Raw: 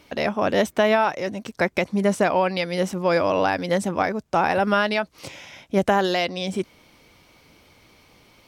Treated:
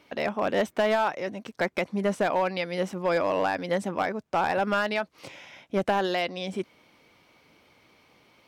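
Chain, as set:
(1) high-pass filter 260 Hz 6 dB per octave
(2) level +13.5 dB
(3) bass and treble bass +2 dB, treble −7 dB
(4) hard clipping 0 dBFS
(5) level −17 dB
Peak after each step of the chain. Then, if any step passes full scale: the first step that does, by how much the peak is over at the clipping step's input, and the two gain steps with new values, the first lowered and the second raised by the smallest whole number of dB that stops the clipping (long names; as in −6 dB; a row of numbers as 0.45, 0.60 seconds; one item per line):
−6.0, +7.5, +6.5, 0.0, −17.0 dBFS
step 2, 6.5 dB
step 2 +6.5 dB, step 5 −10 dB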